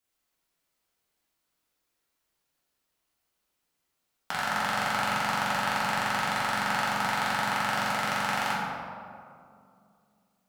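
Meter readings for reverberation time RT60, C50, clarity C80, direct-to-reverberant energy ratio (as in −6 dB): 2.5 s, −1.5 dB, 1.0 dB, −8.0 dB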